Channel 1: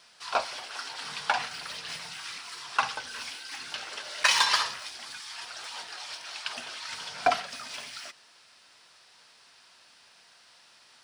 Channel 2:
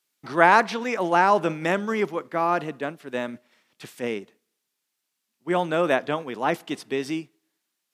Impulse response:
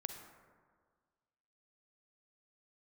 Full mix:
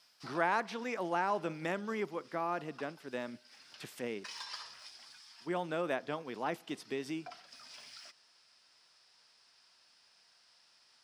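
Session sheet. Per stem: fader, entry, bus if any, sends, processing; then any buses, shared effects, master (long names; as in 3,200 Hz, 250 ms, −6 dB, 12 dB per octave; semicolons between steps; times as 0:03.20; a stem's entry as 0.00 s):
−11.5 dB, 0.00 s, no send, parametric band 5,100 Hz +8.5 dB 0.27 octaves; automatic ducking −8 dB, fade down 0.60 s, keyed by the second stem
−2.0 dB, 0.00 s, no send, no processing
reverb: not used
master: downward compressor 1.5 to 1, threshold −51 dBFS, peak gain reduction 13.5 dB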